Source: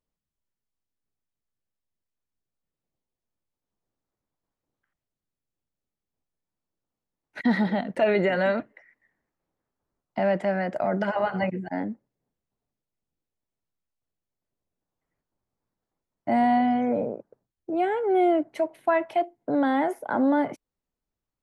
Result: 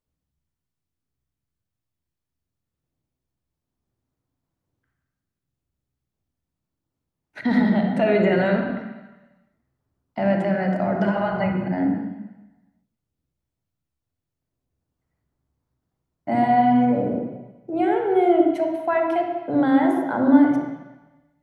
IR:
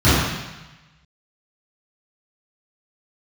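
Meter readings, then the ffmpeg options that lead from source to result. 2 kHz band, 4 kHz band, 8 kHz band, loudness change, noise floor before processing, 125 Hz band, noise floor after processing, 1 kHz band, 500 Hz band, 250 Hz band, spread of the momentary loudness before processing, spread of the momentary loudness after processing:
+2.0 dB, +1.5 dB, n/a, +4.5 dB, under -85 dBFS, +8.0 dB, -84 dBFS, +3.5 dB, +3.0 dB, +6.5 dB, 10 LU, 15 LU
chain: -filter_complex "[0:a]asplit=2[a][b];[1:a]atrim=start_sample=2205,adelay=29[c];[b][c]afir=irnorm=-1:irlink=0,volume=-27dB[d];[a][d]amix=inputs=2:normalize=0"

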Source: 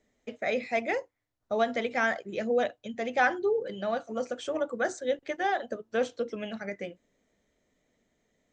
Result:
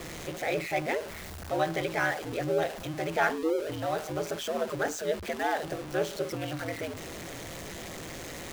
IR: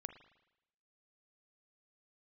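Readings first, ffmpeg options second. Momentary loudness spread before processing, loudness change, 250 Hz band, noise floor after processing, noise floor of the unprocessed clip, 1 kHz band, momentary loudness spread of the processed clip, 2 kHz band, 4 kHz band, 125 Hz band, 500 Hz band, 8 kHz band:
9 LU, -1.5 dB, +1.0 dB, -41 dBFS, -79 dBFS, -0.5 dB, 11 LU, -1.5 dB, +3.5 dB, n/a, -1.0 dB, +8.0 dB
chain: -af "aeval=exprs='val(0)+0.5*0.0266*sgn(val(0))':c=same,aeval=exprs='val(0)*sin(2*PI*80*n/s)':c=same"

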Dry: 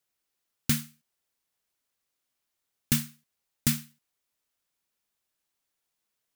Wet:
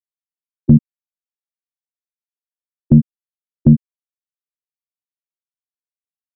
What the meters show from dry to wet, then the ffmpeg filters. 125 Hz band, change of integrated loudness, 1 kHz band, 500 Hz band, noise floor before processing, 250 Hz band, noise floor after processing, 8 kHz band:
+19.5 dB, +15.0 dB, n/a, +20.5 dB, -83 dBFS, +20.0 dB, under -85 dBFS, under -40 dB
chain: -af "aeval=exprs='val(0)+0.5*0.0188*sgn(val(0))':c=same,afftfilt=real='re*gte(hypot(re,im),0.178)':imag='im*gte(hypot(re,im),0.178)':win_size=1024:overlap=0.75,acompressor=threshold=-28dB:ratio=3,apsyclip=30dB,asuperstop=centerf=5500:order=4:qfactor=1.2,volume=-1.5dB"

